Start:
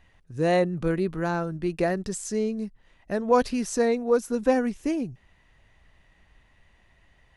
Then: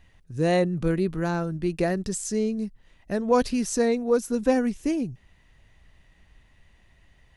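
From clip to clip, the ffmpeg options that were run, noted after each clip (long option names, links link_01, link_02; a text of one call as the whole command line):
ffmpeg -i in.wav -af "equalizer=frequency=1000:width=0.41:gain=-5.5,volume=3.5dB" out.wav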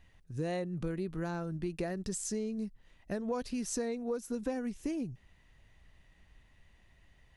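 ffmpeg -i in.wav -af "acompressor=threshold=-27dB:ratio=6,volume=-5dB" out.wav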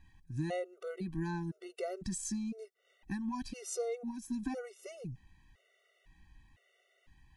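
ffmpeg -i in.wav -af "afftfilt=real='re*gt(sin(2*PI*0.99*pts/sr)*(1-2*mod(floor(b*sr/1024/380),2)),0)':imag='im*gt(sin(2*PI*0.99*pts/sr)*(1-2*mod(floor(b*sr/1024/380),2)),0)':win_size=1024:overlap=0.75,volume=1dB" out.wav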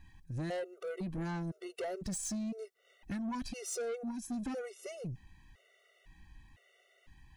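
ffmpeg -i in.wav -af "asoftclip=type=tanh:threshold=-37.5dB,volume=4dB" out.wav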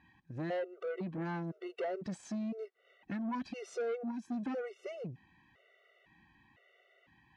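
ffmpeg -i in.wav -af "highpass=190,lowpass=2700,volume=2dB" out.wav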